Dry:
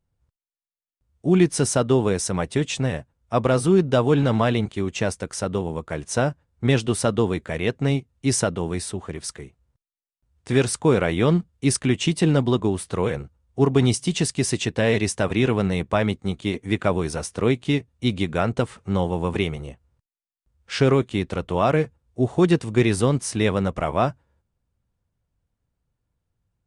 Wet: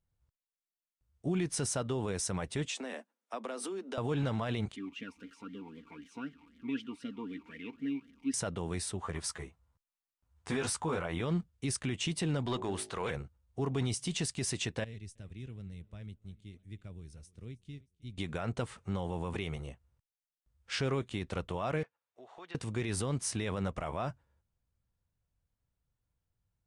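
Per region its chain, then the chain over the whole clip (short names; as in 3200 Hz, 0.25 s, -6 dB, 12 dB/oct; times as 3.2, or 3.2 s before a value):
2.68–3.98 steep high-pass 210 Hz 96 dB/oct + compressor, threshold -27 dBFS
4.76–8.34 zero-crossing step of -31.5 dBFS + comb 4.3 ms, depth 55% + vowel sweep i-u 3.9 Hz
9.02–11.21 bell 1000 Hz +7.5 dB 1.2 oct + doubler 12 ms -2.5 dB
12.46–13.11 transient shaper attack -6 dB, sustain -1 dB + overdrive pedal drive 11 dB, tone 5000 Hz, clips at -10 dBFS + de-hum 53.51 Hz, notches 16
14.84–18.18 passive tone stack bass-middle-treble 10-0-1 + feedback echo 0.314 s, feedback 43%, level -23 dB
21.83–22.55 BPF 760–3600 Hz + compressor 2.5:1, threshold -44 dBFS
whole clip: bell 310 Hz -4 dB 2.2 oct; limiter -18.5 dBFS; gain -6 dB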